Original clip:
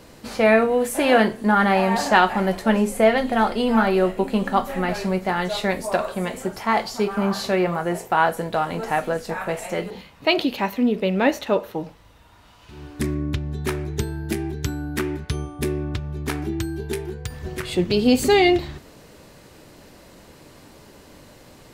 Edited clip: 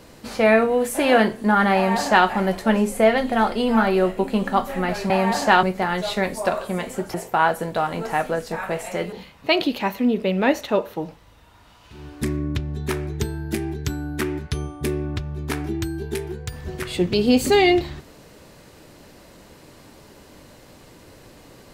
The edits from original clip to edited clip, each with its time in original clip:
1.74–2.27 copy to 5.1
6.61–7.92 cut

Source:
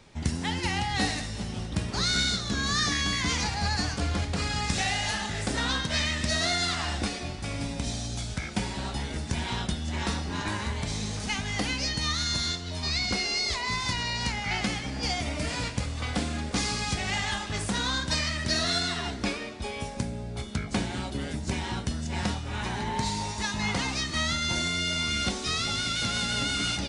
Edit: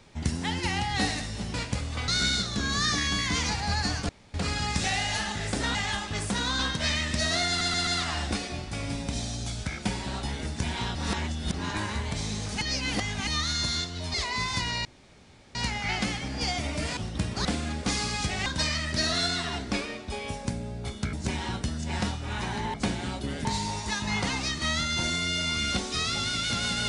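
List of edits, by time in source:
1.54–2.02 swap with 15.59–16.13
4.03–4.28 room tone
6.58 stutter 0.13 s, 4 plays
9.66–10.25 reverse
11.32–11.98 reverse
12.85–13.46 cut
14.17 insert room tone 0.70 s
17.14–17.98 move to 5.69
20.65–21.36 move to 22.97

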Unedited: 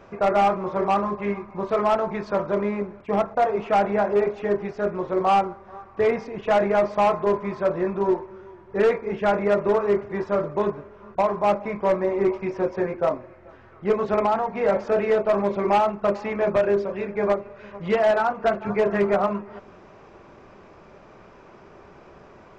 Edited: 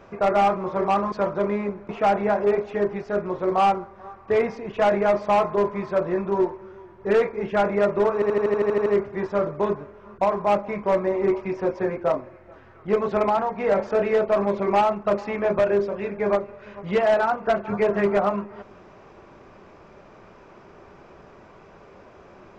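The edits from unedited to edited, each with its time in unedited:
1.12–2.25 cut
3.02–3.58 cut
9.83 stutter 0.08 s, 10 plays

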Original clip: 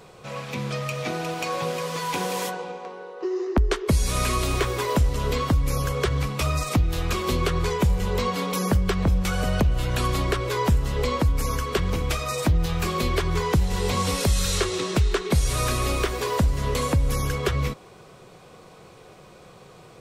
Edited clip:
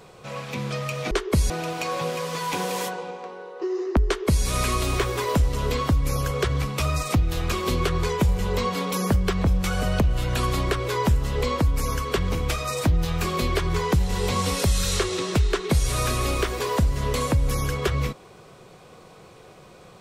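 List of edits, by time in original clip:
3.67–4.06 copy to 1.11

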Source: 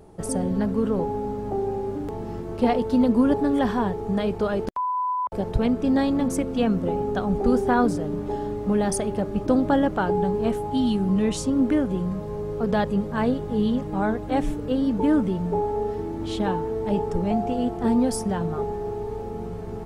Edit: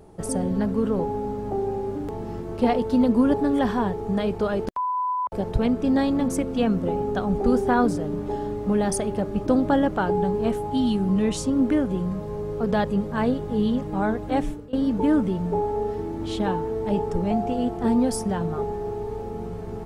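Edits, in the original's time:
14.38–14.73 fade out, to -22.5 dB

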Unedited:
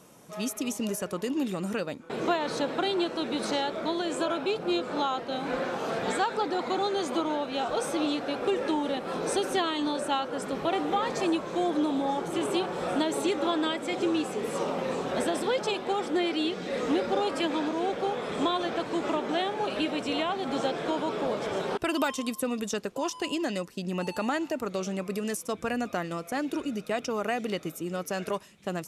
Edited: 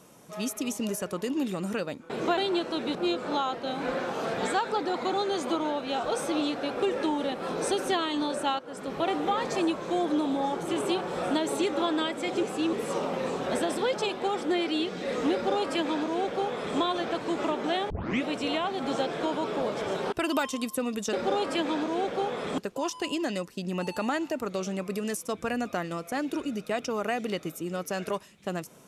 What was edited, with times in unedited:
2.37–2.82 cut
3.4–4.6 cut
10.24–10.69 fade in, from -13 dB
14.08–14.38 reverse
16.98–18.43 copy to 22.78
19.55 tape start 0.34 s

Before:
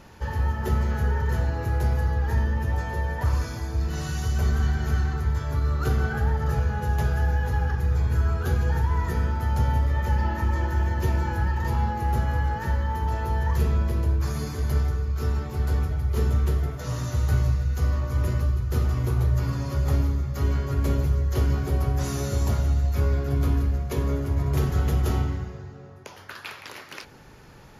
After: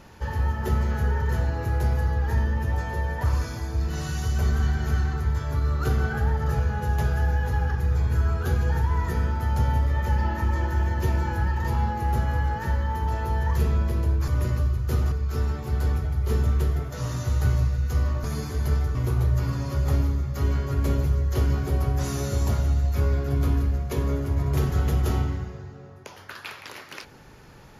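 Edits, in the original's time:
14.28–14.99 swap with 18.11–18.95

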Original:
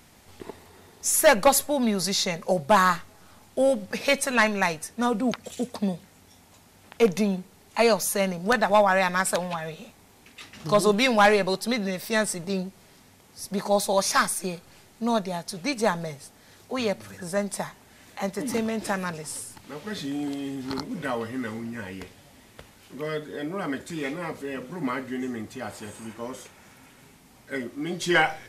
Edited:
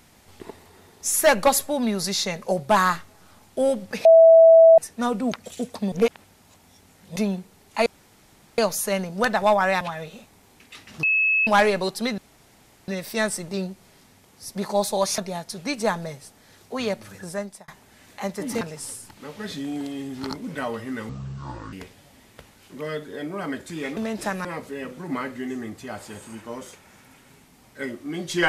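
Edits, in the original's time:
4.05–4.78 bleep 655 Hz -7.5 dBFS
5.92–7.16 reverse
7.86 insert room tone 0.72 s
9.09–9.47 cut
10.69–11.13 bleep 2590 Hz -17 dBFS
11.84 insert room tone 0.70 s
14.14–15.17 cut
17.23–17.67 fade out
18.6–19.08 move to 24.17
21.56–21.93 speed 58%

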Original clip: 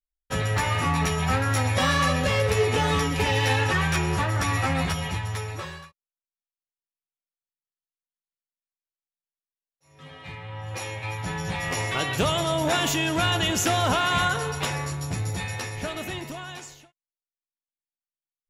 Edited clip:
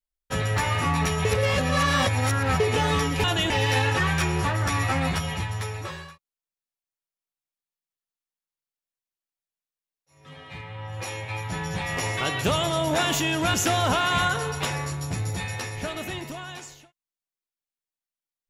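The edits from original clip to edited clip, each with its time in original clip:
1.25–2.6 reverse
13.28–13.54 move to 3.24

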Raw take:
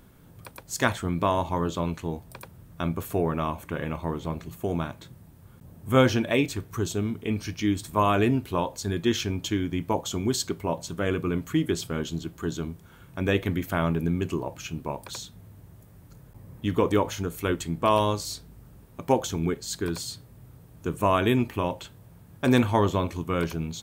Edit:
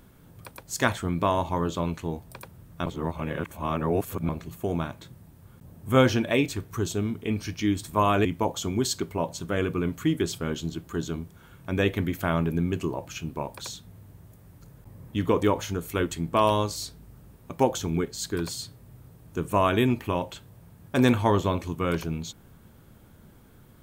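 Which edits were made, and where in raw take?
2.86–4.29 reverse
8.25–9.74 cut

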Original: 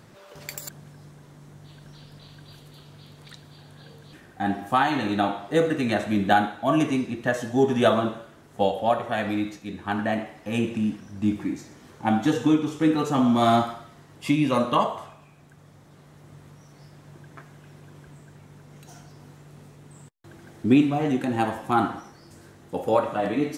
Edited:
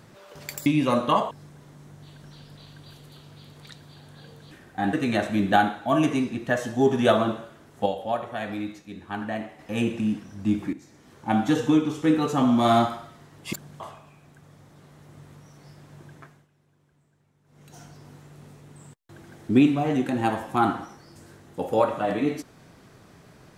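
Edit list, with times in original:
0.66–0.93 swap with 14.3–14.95
4.55–5.7 cut
8.63–10.36 gain -5 dB
11.5–12.16 fade in, from -13 dB
17.28–18.94 dip -18.5 dB, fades 0.35 s

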